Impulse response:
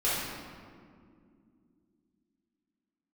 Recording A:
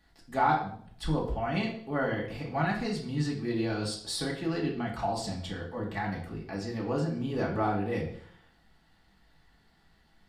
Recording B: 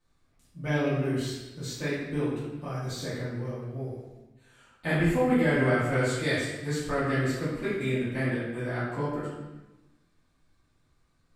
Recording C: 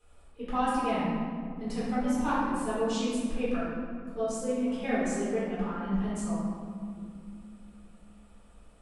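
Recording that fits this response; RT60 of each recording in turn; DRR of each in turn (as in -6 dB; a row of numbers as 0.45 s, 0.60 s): C; 0.60 s, 1.0 s, 2.3 s; -3.5 dB, -12.0 dB, -11.0 dB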